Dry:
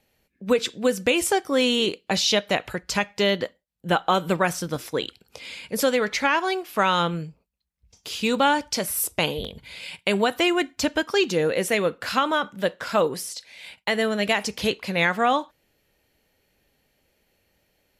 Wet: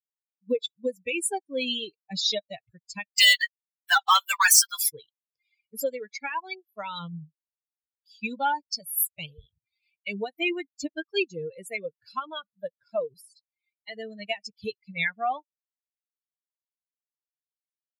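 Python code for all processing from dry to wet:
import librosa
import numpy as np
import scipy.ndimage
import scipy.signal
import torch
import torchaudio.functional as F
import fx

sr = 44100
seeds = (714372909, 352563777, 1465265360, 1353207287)

y = fx.chain(x, sr, fx.cheby2_highpass(hz=200.0, order=4, stop_db=70),
    fx.leveller(passes=5), at=(3.17, 4.9))
y = fx.bin_expand(y, sr, power=3.0)
y = fx.tilt_eq(y, sr, slope=2.0)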